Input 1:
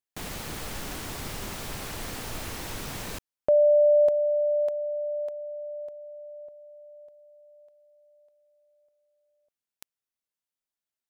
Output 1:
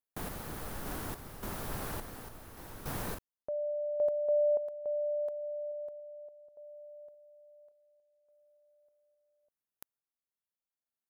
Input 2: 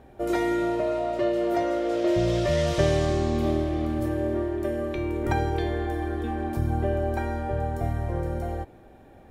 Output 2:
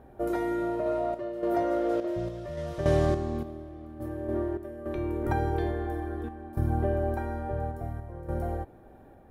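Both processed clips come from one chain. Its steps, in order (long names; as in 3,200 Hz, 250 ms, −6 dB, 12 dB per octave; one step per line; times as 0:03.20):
flat-topped bell 4,100 Hz −8 dB 2.3 octaves
sample-and-hold tremolo, depth 85%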